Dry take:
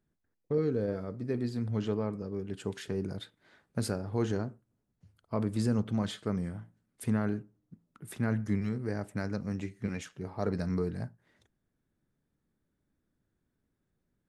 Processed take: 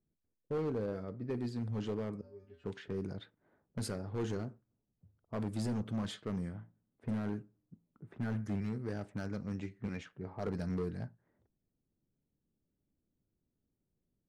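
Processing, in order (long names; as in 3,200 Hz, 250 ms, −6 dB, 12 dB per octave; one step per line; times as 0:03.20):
low-pass that shuts in the quiet parts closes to 650 Hz, open at −28 dBFS
0:02.21–0:02.64: tuned comb filter 82 Hz, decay 0.34 s, harmonics odd, mix 100%
gain into a clipping stage and back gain 26.5 dB
level −4 dB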